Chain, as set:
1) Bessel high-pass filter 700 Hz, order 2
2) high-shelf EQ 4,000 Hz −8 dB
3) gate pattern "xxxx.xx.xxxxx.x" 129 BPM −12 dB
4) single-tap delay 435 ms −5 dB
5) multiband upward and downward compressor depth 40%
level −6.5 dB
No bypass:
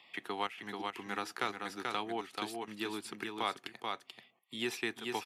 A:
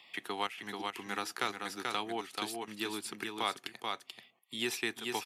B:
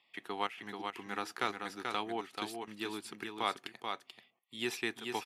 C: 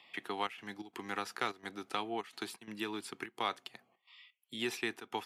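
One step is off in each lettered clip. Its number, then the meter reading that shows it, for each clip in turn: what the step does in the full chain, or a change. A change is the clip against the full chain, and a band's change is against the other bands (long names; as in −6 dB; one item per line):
2, 8 kHz band +6.0 dB
5, change in crest factor +2.5 dB
4, change in momentary loudness spread +7 LU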